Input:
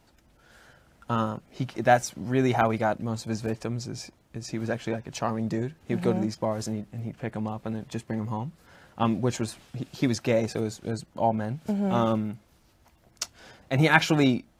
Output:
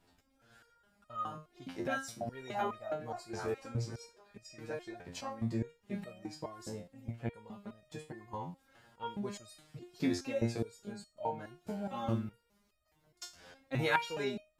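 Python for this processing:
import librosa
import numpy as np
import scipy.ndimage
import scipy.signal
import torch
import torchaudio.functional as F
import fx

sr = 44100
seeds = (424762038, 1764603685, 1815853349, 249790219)

y = fx.notch(x, sr, hz=6100.0, q=18.0)
y = fx.echo_stepped(y, sr, ms=267, hz=580.0, octaves=0.7, feedback_pct=70, wet_db=-5.5, at=(1.94, 4.44))
y = fx.resonator_held(y, sr, hz=4.8, low_hz=88.0, high_hz=620.0)
y = y * 10.0 ** (2.0 / 20.0)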